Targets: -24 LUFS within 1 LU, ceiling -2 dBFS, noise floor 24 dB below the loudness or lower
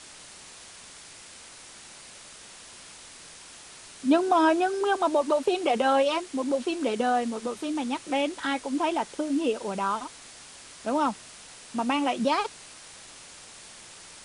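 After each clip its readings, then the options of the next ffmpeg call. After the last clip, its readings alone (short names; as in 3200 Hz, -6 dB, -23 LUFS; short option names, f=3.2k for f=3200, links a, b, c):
noise floor -47 dBFS; noise floor target -51 dBFS; loudness -26.5 LUFS; peak -11.0 dBFS; loudness target -24.0 LUFS
-> -af "afftdn=nr=6:nf=-47"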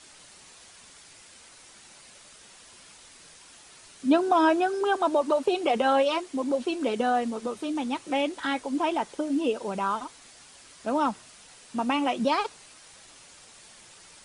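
noise floor -52 dBFS; loudness -26.5 LUFS; peak -11.0 dBFS; loudness target -24.0 LUFS
-> -af "volume=2.5dB"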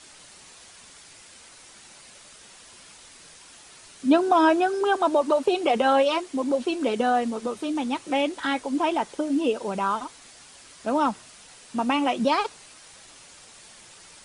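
loudness -24.0 LUFS; peak -8.5 dBFS; noise floor -49 dBFS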